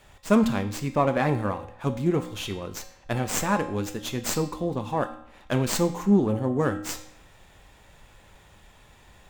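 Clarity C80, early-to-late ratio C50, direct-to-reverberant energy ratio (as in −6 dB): 13.5 dB, 11.5 dB, 6.0 dB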